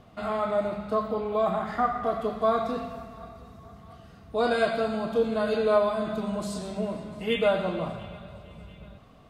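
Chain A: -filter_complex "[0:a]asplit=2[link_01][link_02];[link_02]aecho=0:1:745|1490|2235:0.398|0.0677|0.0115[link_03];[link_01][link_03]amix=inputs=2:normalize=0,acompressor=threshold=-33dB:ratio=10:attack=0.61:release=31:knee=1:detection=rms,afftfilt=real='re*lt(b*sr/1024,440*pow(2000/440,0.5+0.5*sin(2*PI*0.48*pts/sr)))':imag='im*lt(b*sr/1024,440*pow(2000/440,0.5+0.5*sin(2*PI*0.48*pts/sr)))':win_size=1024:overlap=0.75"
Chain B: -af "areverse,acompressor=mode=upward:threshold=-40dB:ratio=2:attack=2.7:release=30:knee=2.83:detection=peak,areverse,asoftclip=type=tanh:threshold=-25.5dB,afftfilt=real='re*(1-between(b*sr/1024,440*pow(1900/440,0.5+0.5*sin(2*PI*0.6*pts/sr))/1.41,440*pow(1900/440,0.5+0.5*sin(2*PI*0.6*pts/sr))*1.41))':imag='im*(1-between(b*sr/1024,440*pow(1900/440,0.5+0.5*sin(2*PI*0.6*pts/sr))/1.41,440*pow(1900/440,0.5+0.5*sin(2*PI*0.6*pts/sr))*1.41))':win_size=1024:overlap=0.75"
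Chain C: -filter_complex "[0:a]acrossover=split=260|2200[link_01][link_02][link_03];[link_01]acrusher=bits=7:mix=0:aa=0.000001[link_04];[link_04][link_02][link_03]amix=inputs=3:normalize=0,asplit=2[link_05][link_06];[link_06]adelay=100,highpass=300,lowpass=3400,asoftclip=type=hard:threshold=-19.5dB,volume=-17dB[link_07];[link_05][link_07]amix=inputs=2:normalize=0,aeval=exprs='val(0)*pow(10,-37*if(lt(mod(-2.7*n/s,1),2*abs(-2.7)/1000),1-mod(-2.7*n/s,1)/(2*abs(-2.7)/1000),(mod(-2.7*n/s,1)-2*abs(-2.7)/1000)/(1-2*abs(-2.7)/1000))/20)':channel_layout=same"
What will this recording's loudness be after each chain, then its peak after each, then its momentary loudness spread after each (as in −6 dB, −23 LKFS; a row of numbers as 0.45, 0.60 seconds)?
−40.0, −33.5, −36.5 LKFS; −29.0, −22.5, −14.5 dBFS; 7, 16, 21 LU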